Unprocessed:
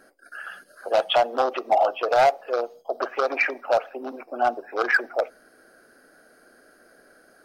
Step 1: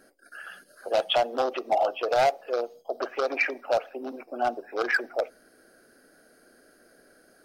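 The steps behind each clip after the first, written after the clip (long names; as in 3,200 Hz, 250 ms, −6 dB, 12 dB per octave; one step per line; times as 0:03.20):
parametric band 1,100 Hz −6.5 dB 1.8 octaves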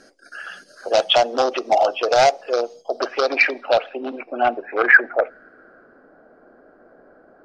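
low-pass filter sweep 6,100 Hz → 990 Hz, 0:02.84–0:06.14
level +7 dB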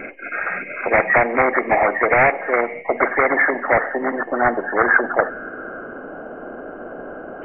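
hearing-aid frequency compression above 1,600 Hz 4 to 1
every bin compressed towards the loudest bin 2 to 1
level −3 dB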